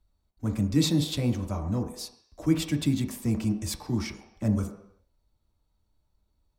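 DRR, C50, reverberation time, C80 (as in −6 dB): 3.5 dB, 9.0 dB, non-exponential decay, 11.0 dB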